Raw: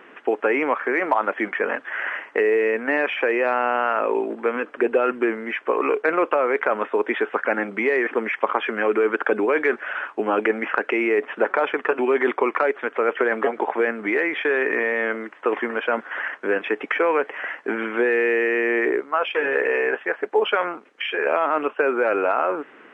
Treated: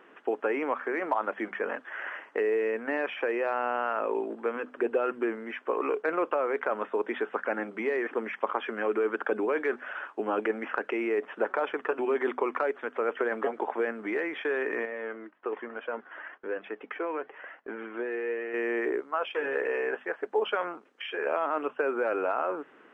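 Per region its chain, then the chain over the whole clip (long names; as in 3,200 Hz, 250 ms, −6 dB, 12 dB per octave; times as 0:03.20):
0:14.85–0:18.54: noise gate −42 dBFS, range −7 dB + flanger 1.1 Hz, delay 1.3 ms, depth 2 ms, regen +62% + high-frequency loss of the air 130 metres
whole clip: parametric band 2,200 Hz −5 dB 0.73 octaves; mains-hum notches 50/100/150/200/250 Hz; level −7.5 dB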